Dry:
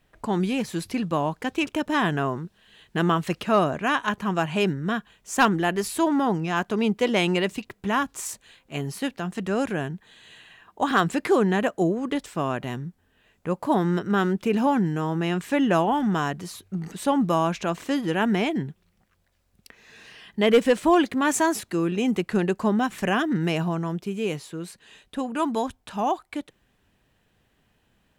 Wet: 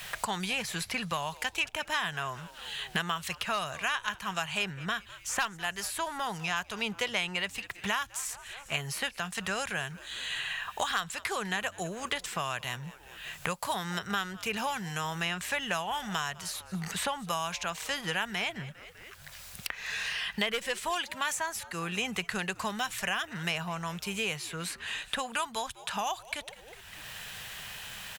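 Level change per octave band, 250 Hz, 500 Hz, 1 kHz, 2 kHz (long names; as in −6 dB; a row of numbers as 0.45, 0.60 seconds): −17.0, −14.0, −8.0, −2.0 decibels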